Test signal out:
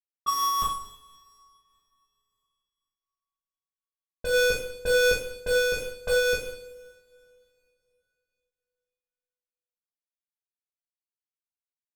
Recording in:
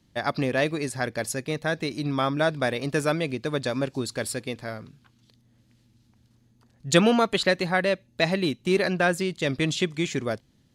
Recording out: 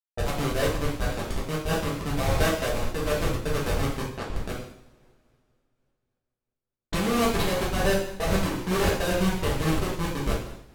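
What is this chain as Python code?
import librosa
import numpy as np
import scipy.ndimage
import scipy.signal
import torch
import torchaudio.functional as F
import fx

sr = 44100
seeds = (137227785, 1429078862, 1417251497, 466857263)

y = fx.schmitt(x, sr, flips_db=-21.0)
y = fx.env_lowpass(y, sr, base_hz=420.0, full_db=-29.0)
y = fx.rev_double_slope(y, sr, seeds[0], early_s=0.72, late_s=3.1, knee_db=-26, drr_db=-7.0)
y = fx.am_noise(y, sr, seeds[1], hz=5.7, depth_pct=60)
y = y * 10.0 ** (1.0 / 20.0)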